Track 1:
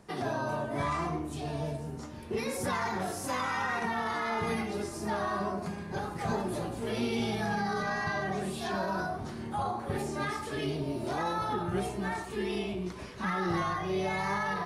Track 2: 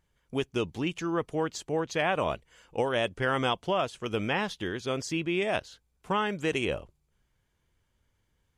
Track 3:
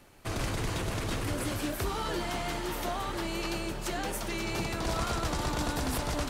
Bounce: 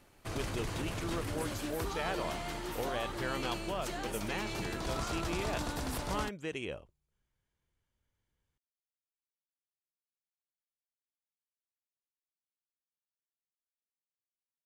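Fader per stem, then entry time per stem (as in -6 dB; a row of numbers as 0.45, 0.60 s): off, -10.0 dB, -5.5 dB; off, 0.00 s, 0.00 s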